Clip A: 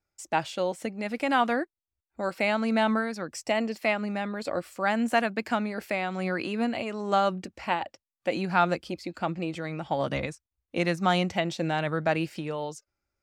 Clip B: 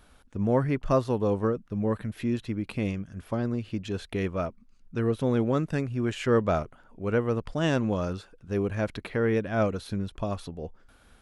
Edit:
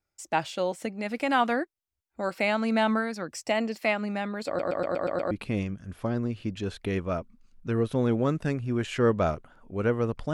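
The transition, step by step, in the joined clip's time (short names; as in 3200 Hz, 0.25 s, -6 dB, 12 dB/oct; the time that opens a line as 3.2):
clip A
4.47 stutter in place 0.12 s, 7 plays
5.31 switch to clip B from 2.59 s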